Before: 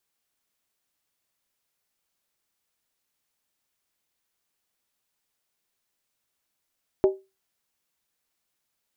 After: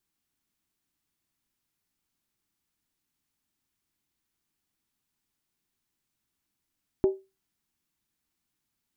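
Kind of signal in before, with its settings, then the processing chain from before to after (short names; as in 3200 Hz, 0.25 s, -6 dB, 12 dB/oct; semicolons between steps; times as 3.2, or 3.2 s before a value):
skin hit, lowest mode 385 Hz, decay 0.25 s, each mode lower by 9.5 dB, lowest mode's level -12 dB
EQ curve 310 Hz 0 dB, 530 Hz -15 dB, 840 Hz -9 dB; in parallel at -1 dB: limiter -26.5 dBFS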